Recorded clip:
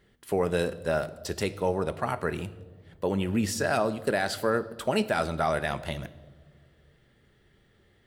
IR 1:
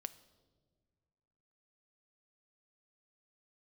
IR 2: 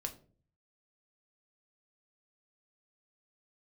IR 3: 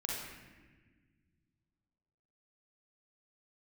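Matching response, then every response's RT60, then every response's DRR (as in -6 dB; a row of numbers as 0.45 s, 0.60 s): 1; no single decay rate, 0.45 s, 1.4 s; 12.5 dB, 4.0 dB, -3.0 dB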